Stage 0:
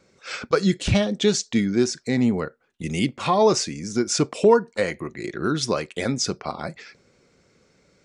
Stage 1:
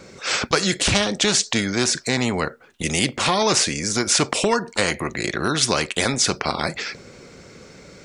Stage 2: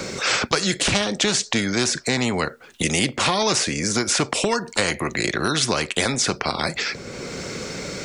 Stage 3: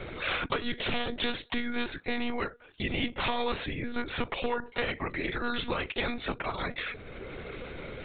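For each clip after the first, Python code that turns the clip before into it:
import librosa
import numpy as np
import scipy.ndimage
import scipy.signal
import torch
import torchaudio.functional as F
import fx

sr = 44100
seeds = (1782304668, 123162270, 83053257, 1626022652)

y1 = fx.spectral_comp(x, sr, ratio=2.0)
y1 = y1 * librosa.db_to_amplitude(3.5)
y2 = fx.band_squash(y1, sr, depth_pct=70)
y2 = y2 * librosa.db_to_amplitude(-1.0)
y3 = fx.lpc_monotone(y2, sr, seeds[0], pitch_hz=240.0, order=16)
y3 = y3 * librosa.db_to_amplitude(-8.5)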